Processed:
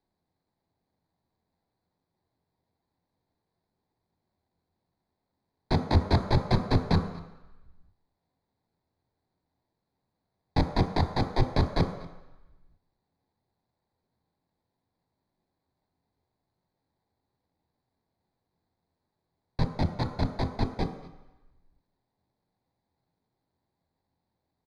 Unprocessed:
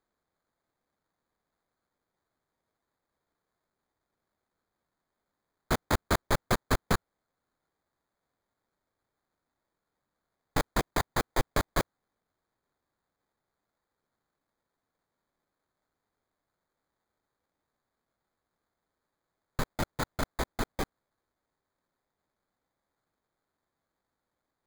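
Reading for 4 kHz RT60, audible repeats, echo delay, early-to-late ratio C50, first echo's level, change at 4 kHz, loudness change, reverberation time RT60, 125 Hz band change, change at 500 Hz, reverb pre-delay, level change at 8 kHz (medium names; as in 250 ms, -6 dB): 0.90 s, 1, 240 ms, 9.0 dB, -21.5 dB, +0.5 dB, +3.5 dB, 1.0 s, +9.5 dB, +2.0 dB, 21 ms, under -10 dB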